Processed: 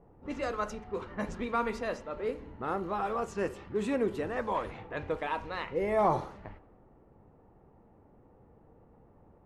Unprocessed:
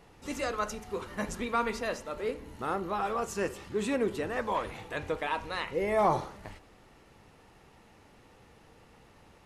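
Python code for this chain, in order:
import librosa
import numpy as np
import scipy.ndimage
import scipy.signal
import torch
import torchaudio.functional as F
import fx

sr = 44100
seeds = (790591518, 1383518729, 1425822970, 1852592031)

y = fx.high_shelf(x, sr, hz=2500.0, db=-8.5)
y = fx.env_lowpass(y, sr, base_hz=700.0, full_db=-29.0)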